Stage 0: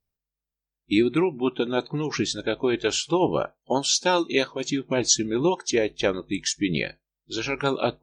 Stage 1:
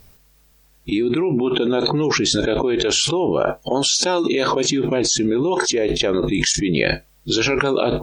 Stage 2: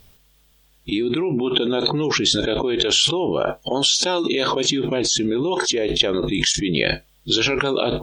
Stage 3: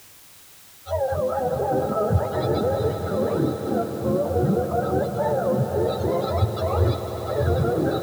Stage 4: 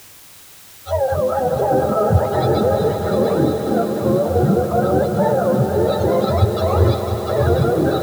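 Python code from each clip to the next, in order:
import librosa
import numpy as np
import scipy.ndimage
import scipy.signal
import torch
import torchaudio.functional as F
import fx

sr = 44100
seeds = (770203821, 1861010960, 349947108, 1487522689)

y1 = fx.dynamic_eq(x, sr, hz=400.0, q=1.1, threshold_db=-34.0, ratio=4.0, max_db=5)
y1 = fx.env_flatten(y1, sr, amount_pct=100)
y1 = F.gain(torch.from_numpy(y1), -6.0).numpy()
y2 = fx.peak_eq(y1, sr, hz=3300.0, db=8.5, octaves=0.44)
y2 = F.gain(torch.from_numpy(y2), -2.5).numpy()
y3 = fx.octave_mirror(y2, sr, pivot_hz=440.0)
y3 = fx.echo_swell(y3, sr, ms=99, loudest=5, wet_db=-14.0)
y3 = fx.quant_dither(y3, sr, seeds[0], bits=8, dither='triangular')
y4 = y3 + 10.0 ** (-7.5 / 20.0) * np.pad(y3, (int(698 * sr / 1000.0), 0))[:len(y3)]
y4 = F.gain(torch.from_numpy(y4), 5.5).numpy()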